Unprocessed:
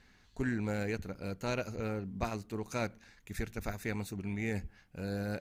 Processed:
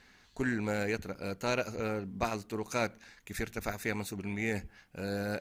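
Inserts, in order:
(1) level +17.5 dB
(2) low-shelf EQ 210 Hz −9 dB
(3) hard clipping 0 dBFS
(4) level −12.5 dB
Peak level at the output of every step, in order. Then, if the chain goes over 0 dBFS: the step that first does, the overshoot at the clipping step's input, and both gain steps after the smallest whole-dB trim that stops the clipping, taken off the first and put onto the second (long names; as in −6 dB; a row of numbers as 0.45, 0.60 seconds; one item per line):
−2.5, −4.0, −4.0, −16.5 dBFS
no step passes full scale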